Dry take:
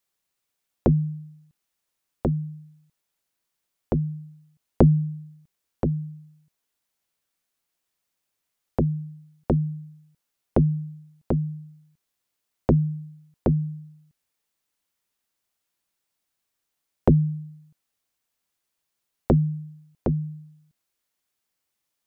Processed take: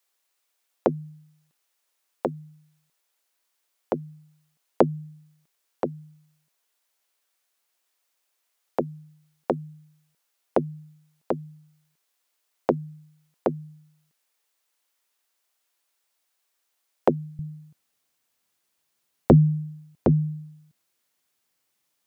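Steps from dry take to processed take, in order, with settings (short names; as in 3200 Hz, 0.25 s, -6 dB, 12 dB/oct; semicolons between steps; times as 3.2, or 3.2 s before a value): HPF 440 Hz 12 dB/oct, from 17.39 s 97 Hz; gain +5 dB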